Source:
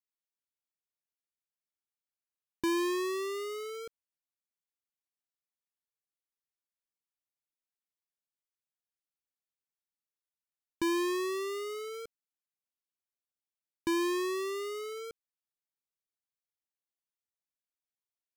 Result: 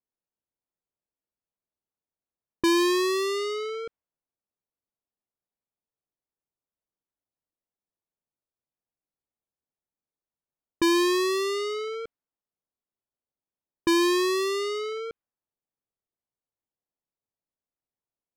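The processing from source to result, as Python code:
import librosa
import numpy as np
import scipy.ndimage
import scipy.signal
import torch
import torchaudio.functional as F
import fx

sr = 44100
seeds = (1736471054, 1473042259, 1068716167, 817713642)

y = fx.env_lowpass(x, sr, base_hz=790.0, full_db=-32.5)
y = fx.dynamic_eq(y, sr, hz=4300.0, q=1.7, threshold_db=-54.0, ratio=4.0, max_db=6)
y = y * 10.0 ** (8.0 / 20.0)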